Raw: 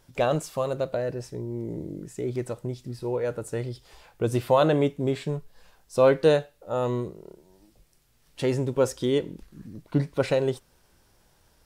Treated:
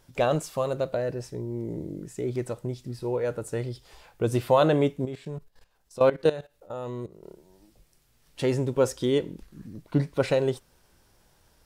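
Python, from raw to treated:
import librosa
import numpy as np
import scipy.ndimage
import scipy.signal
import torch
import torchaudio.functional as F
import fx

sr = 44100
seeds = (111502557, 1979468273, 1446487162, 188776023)

y = fx.level_steps(x, sr, step_db=17, at=(5.05, 7.23))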